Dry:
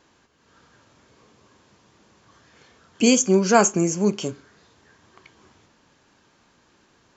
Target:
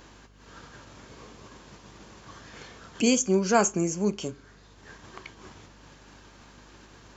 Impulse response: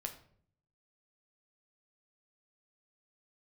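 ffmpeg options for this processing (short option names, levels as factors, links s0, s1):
-af "agate=range=0.0224:threshold=0.00355:ratio=3:detection=peak,acompressor=mode=upward:threshold=0.0631:ratio=2.5,aeval=exprs='val(0)+0.00316*(sin(2*PI*50*n/s)+sin(2*PI*2*50*n/s)/2+sin(2*PI*3*50*n/s)/3+sin(2*PI*4*50*n/s)/4+sin(2*PI*5*50*n/s)/5)':c=same,volume=0.531"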